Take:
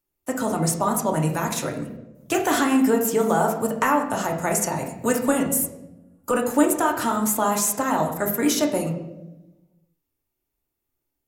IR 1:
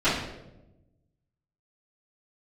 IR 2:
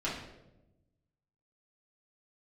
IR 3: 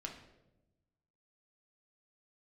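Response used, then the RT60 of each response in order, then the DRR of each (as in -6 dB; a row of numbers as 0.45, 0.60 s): 3; 0.95, 0.95, 1.0 s; -18.5, -8.5, 0.5 dB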